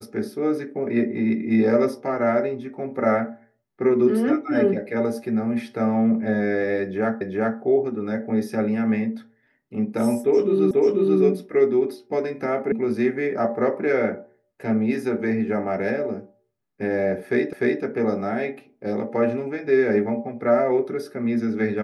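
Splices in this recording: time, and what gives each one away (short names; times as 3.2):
7.21 repeat of the last 0.39 s
10.71 repeat of the last 0.49 s
12.72 sound cut off
17.53 repeat of the last 0.3 s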